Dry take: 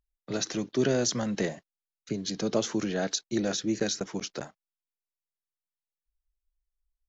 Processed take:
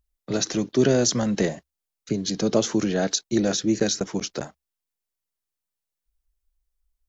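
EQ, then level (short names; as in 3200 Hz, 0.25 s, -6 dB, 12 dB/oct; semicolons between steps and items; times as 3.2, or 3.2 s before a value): tilt shelf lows +3.5 dB, about 1200 Hz; bell 66 Hz +8 dB 0.3 oct; high shelf 3700 Hz +8 dB; +3.5 dB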